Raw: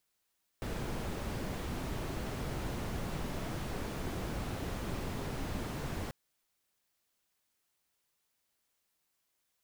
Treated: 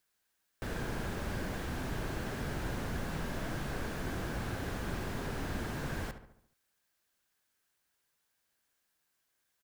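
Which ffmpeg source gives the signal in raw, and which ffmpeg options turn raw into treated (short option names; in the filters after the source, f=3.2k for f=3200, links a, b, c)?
-f lavfi -i "anoisesrc=c=brown:a=0.0661:d=5.49:r=44100:seed=1"
-filter_complex "[0:a]equalizer=f=1.6k:t=o:w=0.25:g=8.5,asplit=2[a][b];[b]adelay=71,lowpass=f=2.7k:p=1,volume=-9.5dB,asplit=2[c][d];[d]adelay=71,lowpass=f=2.7k:p=1,volume=0.52,asplit=2[e][f];[f]adelay=71,lowpass=f=2.7k:p=1,volume=0.52,asplit=2[g][h];[h]adelay=71,lowpass=f=2.7k:p=1,volume=0.52,asplit=2[i][j];[j]adelay=71,lowpass=f=2.7k:p=1,volume=0.52,asplit=2[k][l];[l]adelay=71,lowpass=f=2.7k:p=1,volume=0.52[m];[a][c][e][g][i][k][m]amix=inputs=7:normalize=0"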